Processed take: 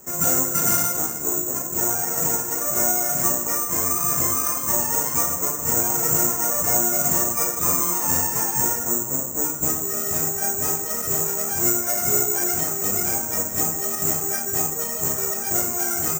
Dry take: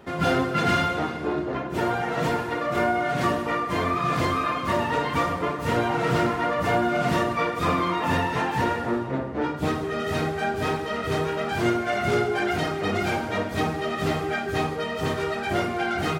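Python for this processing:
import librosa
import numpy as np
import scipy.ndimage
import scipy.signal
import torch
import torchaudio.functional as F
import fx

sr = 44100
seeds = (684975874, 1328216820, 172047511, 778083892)

y = scipy.signal.sosfilt(scipy.signal.butter(2, 2200.0, 'lowpass', fs=sr, output='sos'), x)
y = (np.kron(y[::6], np.eye(6)[0]) * 6)[:len(y)]
y = y * librosa.db_to_amplitude(-5.0)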